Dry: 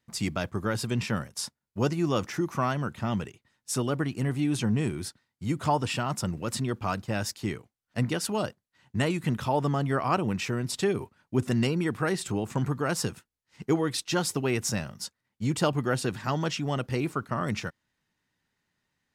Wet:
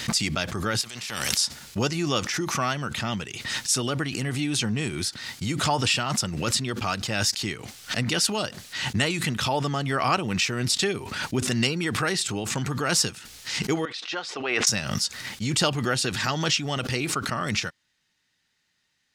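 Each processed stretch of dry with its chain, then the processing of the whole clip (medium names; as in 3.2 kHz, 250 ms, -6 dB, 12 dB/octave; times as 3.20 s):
0.81–1.37 s: high-pass 40 Hz + compression, threshold -40 dBFS + spectrum-flattening compressor 2:1
13.85–14.67 s: high-pass 580 Hz + tape spacing loss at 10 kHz 33 dB + band-stop 920 Hz, Q 22
whole clip: peaking EQ 4.6 kHz +13.5 dB 2.9 oct; band-stop 1 kHz, Q 14; swell ahead of each attack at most 41 dB/s; trim -2 dB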